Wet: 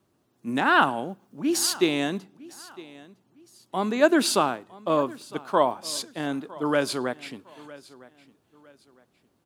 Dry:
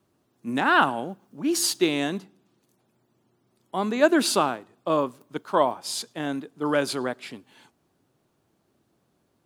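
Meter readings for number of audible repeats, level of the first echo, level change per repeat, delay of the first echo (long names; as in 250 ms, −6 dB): 2, −20.5 dB, −10.0 dB, 958 ms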